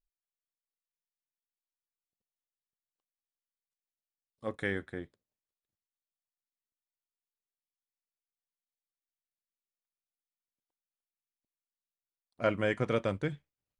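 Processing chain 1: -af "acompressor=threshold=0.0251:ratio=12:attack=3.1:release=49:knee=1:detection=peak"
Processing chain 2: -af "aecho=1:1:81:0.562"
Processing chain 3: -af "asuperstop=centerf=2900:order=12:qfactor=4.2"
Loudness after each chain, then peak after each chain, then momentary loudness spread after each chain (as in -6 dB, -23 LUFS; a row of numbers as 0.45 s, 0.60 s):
-40.0 LUFS, -33.0 LUFS, -33.5 LUFS; -19.0 dBFS, -13.5 dBFS, -15.0 dBFS; 8 LU, 13 LU, 14 LU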